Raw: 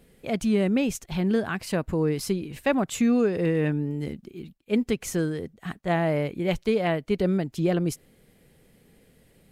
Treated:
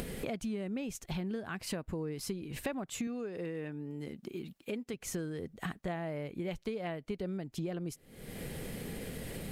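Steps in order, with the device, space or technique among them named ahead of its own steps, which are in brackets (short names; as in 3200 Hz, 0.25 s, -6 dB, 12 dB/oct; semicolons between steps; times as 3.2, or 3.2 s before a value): upward and downward compression (upward compressor, threshold -30 dBFS; compressor 8:1, threshold -38 dBFS, peak gain reduction 19.5 dB); 3.07–4.94 HPF 210 Hz 6 dB/oct; gain +3 dB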